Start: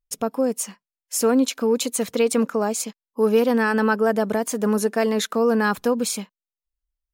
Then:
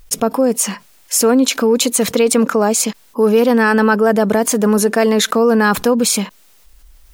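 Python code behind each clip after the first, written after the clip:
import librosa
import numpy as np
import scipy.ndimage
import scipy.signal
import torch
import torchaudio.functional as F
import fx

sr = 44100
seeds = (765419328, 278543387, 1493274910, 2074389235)

y = fx.env_flatten(x, sr, amount_pct=50)
y = y * librosa.db_to_amplitude(4.5)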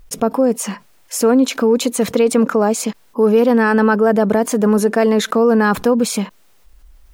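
y = fx.high_shelf(x, sr, hz=2300.0, db=-8.5)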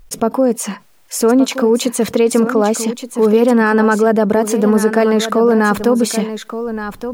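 y = x + 10.0 ** (-10.5 / 20.0) * np.pad(x, (int(1173 * sr / 1000.0), 0))[:len(x)]
y = y * librosa.db_to_amplitude(1.0)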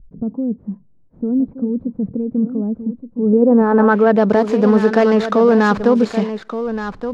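y = scipy.signal.medfilt(x, 15)
y = fx.filter_sweep_lowpass(y, sr, from_hz=190.0, to_hz=5100.0, start_s=3.15, end_s=4.3, q=1.0)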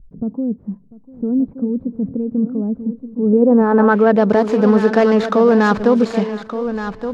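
y = fx.echo_feedback(x, sr, ms=695, feedback_pct=34, wet_db=-20)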